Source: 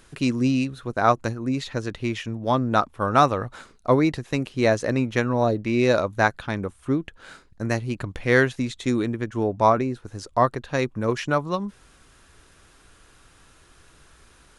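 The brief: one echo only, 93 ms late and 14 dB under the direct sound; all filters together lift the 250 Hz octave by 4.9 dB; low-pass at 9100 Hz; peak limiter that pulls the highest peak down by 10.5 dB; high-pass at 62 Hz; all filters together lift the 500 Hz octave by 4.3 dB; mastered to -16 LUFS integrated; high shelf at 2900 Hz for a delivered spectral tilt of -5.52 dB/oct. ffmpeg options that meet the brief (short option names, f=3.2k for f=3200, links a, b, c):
-af "highpass=62,lowpass=9.1k,equalizer=f=250:t=o:g=4.5,equalizer=f=500:t=o:g=4.5,highshelf=f=2.9k:g=-6.5,alimiter=limit=-12dB:level=0:latency=1,aecho=1:1:93:0.2,volume=7.5dB"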